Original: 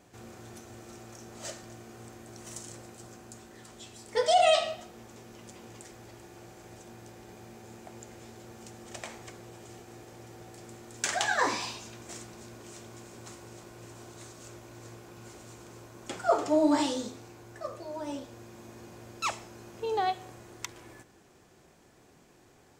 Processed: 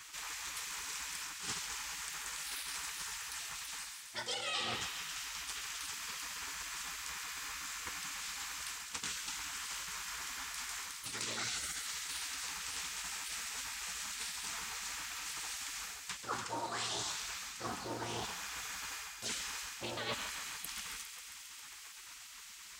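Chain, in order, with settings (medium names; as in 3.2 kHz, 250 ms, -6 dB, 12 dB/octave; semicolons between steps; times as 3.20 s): high-pass 64 Hz 12 dB/octave; peaking EQ 590 Hz +12 dB 0.43 oct; spectral gate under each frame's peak -20 dB weak; reverse; compression 6:1, threshold -54 dBFS, peak gain reduction 25 dB; reverse; thinning echo 135 ms, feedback 82%, high-pass 1 kHz, level -10 dB; loudspeaker Doppler distortion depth 0.24 ms; trim +16 dB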